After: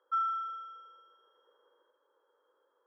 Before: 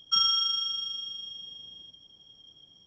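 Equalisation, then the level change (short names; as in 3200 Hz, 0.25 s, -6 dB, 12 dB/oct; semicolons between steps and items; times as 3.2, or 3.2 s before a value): elliptic band-pass 480–1600 Hz, stop band 80 dB; fixed phaser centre 710 Hz, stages 6; +7.0 dB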